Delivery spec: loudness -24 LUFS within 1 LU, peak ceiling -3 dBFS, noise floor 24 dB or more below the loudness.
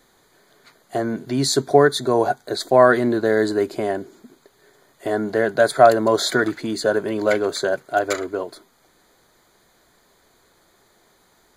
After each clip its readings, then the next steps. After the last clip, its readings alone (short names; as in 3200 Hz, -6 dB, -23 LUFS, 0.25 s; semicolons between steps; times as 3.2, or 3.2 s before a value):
loudness -19.5 LUFS; peak -1.0 dBFS; loudness target -24.0 LUFS
-> gain -4.5 dB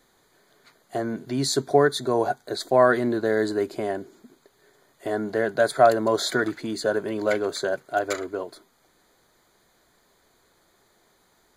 loudness -24.0 LUFS; peak -5.5 dBFS; noise floor -64 dBFS